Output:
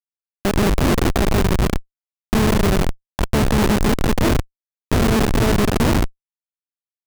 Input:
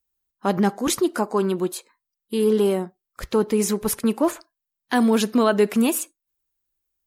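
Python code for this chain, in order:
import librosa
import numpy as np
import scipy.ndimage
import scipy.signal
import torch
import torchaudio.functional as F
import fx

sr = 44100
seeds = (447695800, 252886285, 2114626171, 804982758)

y = fx.bin_compress(x, sr, power=0.2)
y = fx.hum_notches(y, sr, base_hz=60, count=8)
y = fx.schmitt(y, sr, flips_db=-8.0)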